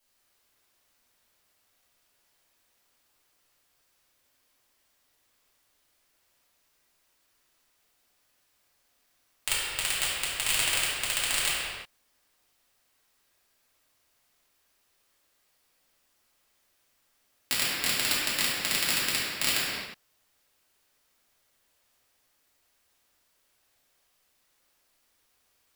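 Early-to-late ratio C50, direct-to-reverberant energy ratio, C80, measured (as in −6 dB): −2.0 dB, −9.0 dB, 0.0 dB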